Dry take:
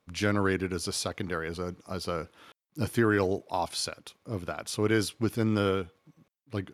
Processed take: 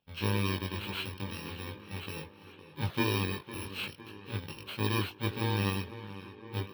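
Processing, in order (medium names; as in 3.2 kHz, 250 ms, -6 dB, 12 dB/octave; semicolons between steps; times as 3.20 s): bit-reversed sample order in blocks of 64 samples; resonant high shelf 4.9 kHz -13 dB, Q 3; tape echo 507 ms, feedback 71%, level -12 dB, low-pass 3.1 kHz; chorus voices 4, 0.4 Hz, delay 20 ms, depth 1.4 ms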